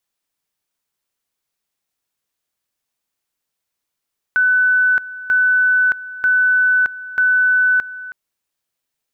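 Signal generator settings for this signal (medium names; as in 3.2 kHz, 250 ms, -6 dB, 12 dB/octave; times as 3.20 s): two-level tone 1.5 kHz -11 dBFS, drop 17 dB, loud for 0.62 s, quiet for 0.32 s, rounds 4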